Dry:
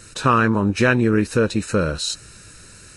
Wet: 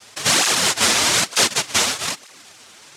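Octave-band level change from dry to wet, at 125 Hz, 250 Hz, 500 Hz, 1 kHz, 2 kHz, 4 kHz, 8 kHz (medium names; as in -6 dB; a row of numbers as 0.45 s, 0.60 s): -13.5 dB, -12.5 dB, -7.5 dB, -1.5 dB, +2.0 dB, +12.5 dB, +15.5 dB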